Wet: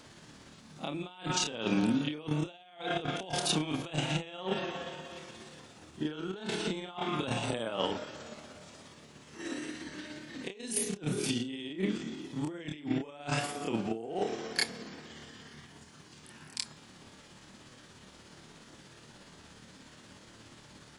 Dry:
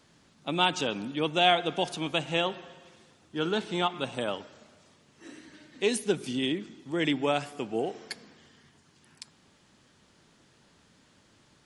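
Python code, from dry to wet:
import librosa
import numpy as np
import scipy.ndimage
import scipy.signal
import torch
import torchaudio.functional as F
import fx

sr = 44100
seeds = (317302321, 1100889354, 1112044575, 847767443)

y = fx.over_compress(x, sr, threshold_db=-35.0, ratio=-0.5)
y = fx.stretch_grains(y, sr, factor=1.8, grain_ms=119.0)
y = y * librosa.db_to_amplitude(3.0)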